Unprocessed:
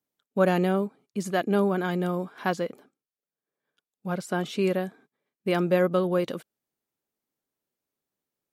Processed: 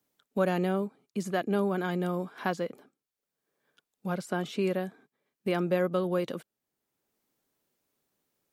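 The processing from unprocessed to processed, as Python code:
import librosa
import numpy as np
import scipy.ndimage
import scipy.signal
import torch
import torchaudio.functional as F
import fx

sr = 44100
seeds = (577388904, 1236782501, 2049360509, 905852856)

y = fx.band_squash(x, sr, depth_pct=40)
y = y * 10.0 ** (-4.0 / 20.0)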